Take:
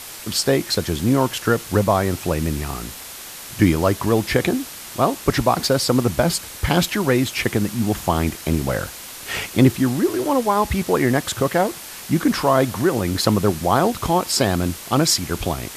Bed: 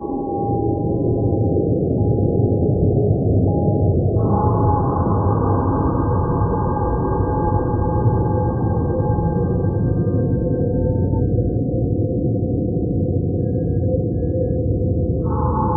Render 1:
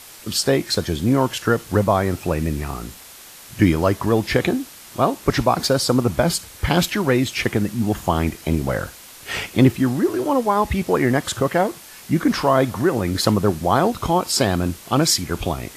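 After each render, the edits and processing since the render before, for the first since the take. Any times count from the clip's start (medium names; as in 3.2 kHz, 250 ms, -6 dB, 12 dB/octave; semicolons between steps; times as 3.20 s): noise print and reduce 6 dB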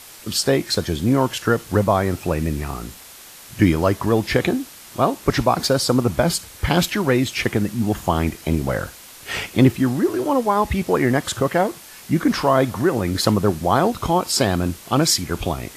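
no audible change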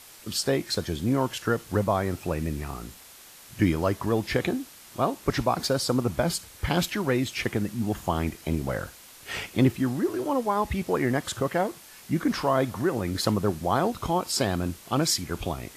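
trim -7 dB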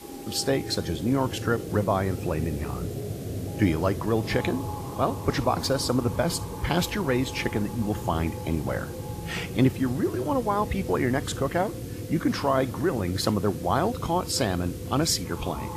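add bed -16.5 dB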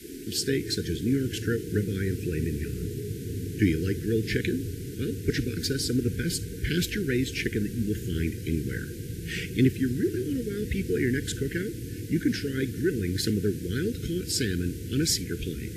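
Chebyshev band-stop 460–1500 Hz, order 5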